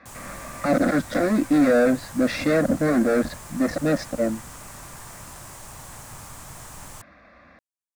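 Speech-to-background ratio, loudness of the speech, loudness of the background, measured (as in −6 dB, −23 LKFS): 18.5 dB, −22.0 LKFS, −40.5 LKFS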